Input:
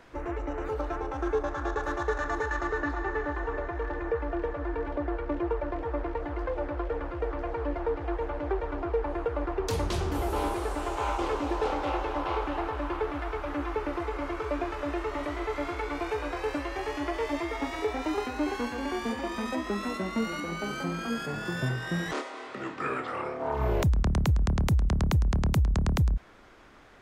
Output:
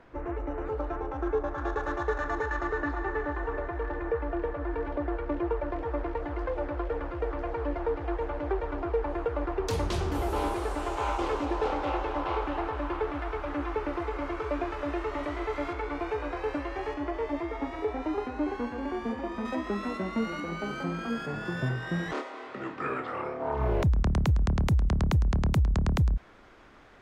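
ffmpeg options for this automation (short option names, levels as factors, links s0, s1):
-af "asetnsamples=n=441:p=0,asendcmd='1.58 lowpass f 3200;4.71 lowpass f 5200;5.7 lowpass f 8800;11.45 lowpass f 4600;15.73 lowpass f 2100;16.94 lowpass f 1100;19.45 lowpass f 2600;24.02 lowpass f 5400',lowpass=f=1500:p=1"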